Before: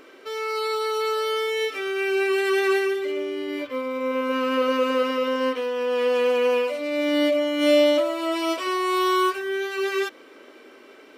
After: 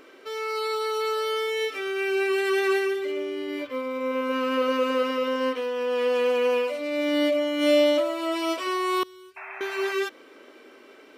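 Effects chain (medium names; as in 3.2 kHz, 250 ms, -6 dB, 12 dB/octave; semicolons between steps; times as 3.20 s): 9.03–9.61 s: amplifier tone stack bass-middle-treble 10-0-1; 9.36–9.93 s: painted sound noise 600–2700 Hz -37 dBFS; trim -2 dB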